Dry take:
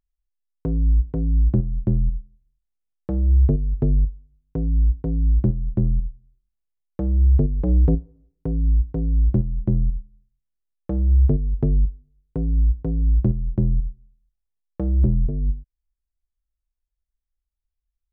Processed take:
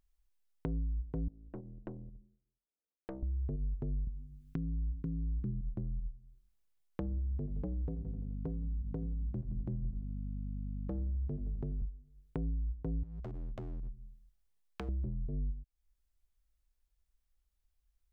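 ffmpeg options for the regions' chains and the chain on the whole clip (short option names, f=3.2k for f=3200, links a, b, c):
-filter_complex "[0:a]asettb=1/sr,asplit=3[a][b][c];[a]atrim=end=1.284[d];[b]atrim=start=1.28:end=3.23,asetpts=PTS-STARTPTS,afade=t=in:d=0.004:c=qsin,afade=t=out:st=1.946:d=0.004:c=qsin,acompressor=threshold=-29dB:ratio=3:attack=3.2:release=140:knee=1:detection=peak,bandpass=f=440:t=q:w=1.4,aeval=exprs='(tanh(79.4*val(0)+0.5)-tanh(0.5))/79.4':c=same[e];[c]atrim=start=3.226[f];[d][e]acrossfade=d=0.004:c1=hsin:c2=qsin[g];[g][f]acrossfade=d=0.004:c1=qsin:c2=hsin,asettb=1/sr,asplit=3[h][i][j];[h]atrim=end=4.074[k];[i]atrim=start=4.07:end=5.61,asetpts=PTS-STARTPTS,afade=t=in:d=0.004:c=qsin,afade=t=out:st=1.536:d=0.004:c=qsin,equalizer=f=190:t=o:w=2:g=9,acontrast=52,asuperstop=centerf=680:order=4:qfactor=0.8[l];[j]atrim=start=5.606[m];[k][l]acrossfade=d=0.004:c1=hsin:c2=qsin[n];[n][m]acrossfade=d=0.004:c1=qsin:c2=hsin,asettb=1/sr,asplit=3[o][p][q];[o]atrim=end=7.014[r];[p]atrim=start=7.01:end=11.82,asetpts=PTS-STARTPTS,afade=t=in:d=0.004:c=qsin,afade=t=out:st=4.806:d=0.004:c=qsin,highpass=51,aeval=exprs='val(0)+0.0251*(sin(2*PI*50*n/s)+sin(2*PI*2*50*n/s)/2+sin(2*PI*3*50*n/s)/3+sin(2*PI*4*50*n/s)/4+sin(2*PI*5*50*n/s)/5)':c=same,aecho=1:1:85|170|255|340|425:0.112|0.0651|0.0377|0.0219|0.0127,atrim=end_sample=212121[s];[q]atrim=start=11.816[t];[r][s]acrossfade=d=0.004:c1=hsin:c2=qsin[u];[u][t]acrossfade=d=0.004:c1=qsin:c2=hsin,asettb=1/sr,asplit=3[v][w][x];[v]atrim=end=13.034[y];[w]atrim=start=13.03:end=14.89,asetpts=PTS-STARTPTS,afade=t=in:d=0.004:c=qsin,afade=t=out:st=1.856:d=0.004:c=qsin,acompressor=threshold=-31dB:ratio=12:attack=3.2:release=140:knee=1:detection=peak,aeval=exprs='0.0224*(abs(mod(val(0)/0.0224+3,4)-2)-1)':c=same[z];[x]atrim=start=14.886[aa];[y][z]acrossfade=d=0.004:c1=hsin:c2=qsin[ab];[ab][aa]acrossfade=d=0.004:c1=qsin:c2=hsin,alimiter=limit=-20.5dB:level=0:latency=1:release=130,acompressor=threshold=-46dB:ratio=2.5,volume=4.5dB"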